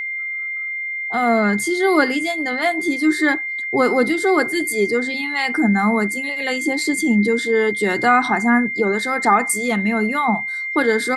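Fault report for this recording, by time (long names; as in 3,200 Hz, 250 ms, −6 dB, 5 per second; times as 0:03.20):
whistle 2,100 Hz −23 dBFS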